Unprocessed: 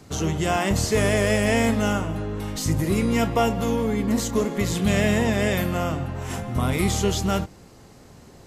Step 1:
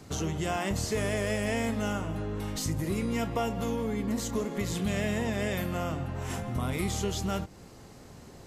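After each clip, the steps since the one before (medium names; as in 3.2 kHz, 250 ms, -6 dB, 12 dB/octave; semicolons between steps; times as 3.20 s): compression 2:1, threshold -31 dBFS, peak gain reduction 8.5 dB; trim -1.5 dB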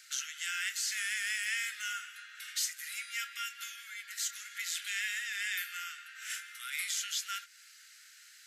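steep high-pass 1.4 kHz 96 dB/octave; trim +3 dB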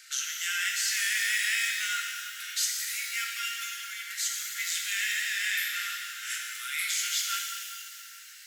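pitch-shifted reverb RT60 2.2 s, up +12 st, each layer -8 dB, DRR 0.5 dB; trim +3.5 dB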